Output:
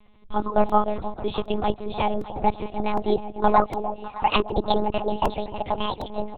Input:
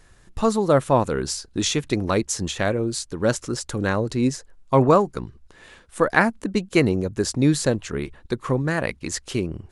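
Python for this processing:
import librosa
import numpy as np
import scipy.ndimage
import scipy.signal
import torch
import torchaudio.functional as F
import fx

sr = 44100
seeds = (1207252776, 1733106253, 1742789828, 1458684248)

p1 = fx.speed_glide(x, sr, from_pct=120, to_pct=185)
p2 = fx.fixed_phaser(p1, sr, hz=350.0, stages=8)
p3 = p2 + fx.echo_alternate(p2, sr, ms=305, hz=880.0, feedback_pct=62, wet_db=-9.0, dry=0)
p4 = fx.lpc_monotone(p3, sr, seeds[0], pitch_hz=210.0, order=10)
p5 = fx.buffer_crackle(p4, sr, first_s=0.69, period_s=0.76, block=128, kind='repeat')
y = p5 * librosa.db_to_amplitude(1.5)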